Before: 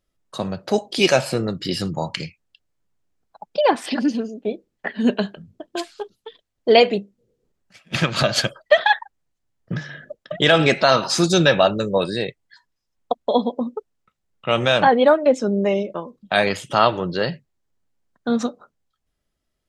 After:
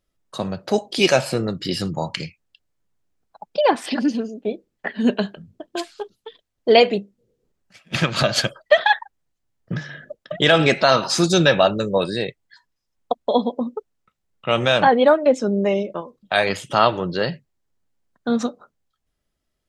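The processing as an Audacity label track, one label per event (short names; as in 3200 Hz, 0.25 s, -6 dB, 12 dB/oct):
16.010000	16.490000	bell 210 Hz -7.5 dB 1.1 oct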